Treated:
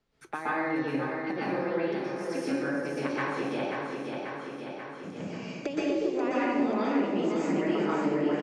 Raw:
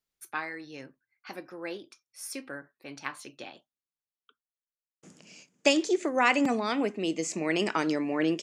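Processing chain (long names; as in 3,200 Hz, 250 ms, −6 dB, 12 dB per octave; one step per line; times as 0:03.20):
low-pass filter 4,600 Hz 12 dB per octave
tilt shelving filter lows +6 dB, about 1,300 Hz
downward compressor 10 to 1, threshold −34 dBFS, peak gain reduction 19.5 dB
repeating echo 537 ms, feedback 55%, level −6.5 dB
dense smooth reverb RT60 1.2 s, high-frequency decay 0.75×, pre-delay 110 ms, DRR −9.5 dB
multiband upward and downward compressor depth 40%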